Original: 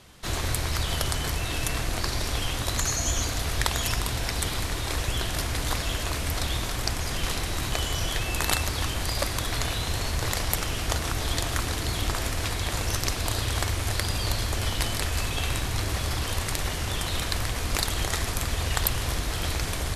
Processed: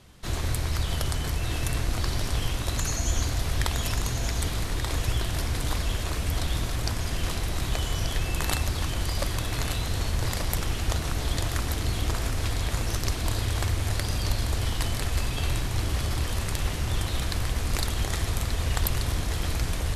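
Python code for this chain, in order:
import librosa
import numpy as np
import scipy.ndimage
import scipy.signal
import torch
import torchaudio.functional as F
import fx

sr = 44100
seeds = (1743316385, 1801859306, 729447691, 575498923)

p1 = fx.low_shelf(x, sr, hz=320.0, db=6.5)
p2 = p1 + fx.echo_single(p1, sr, ms=1183, db=-7.0, dry=0)
y = p2 * 10.0 ** (-4.5 / 20.0)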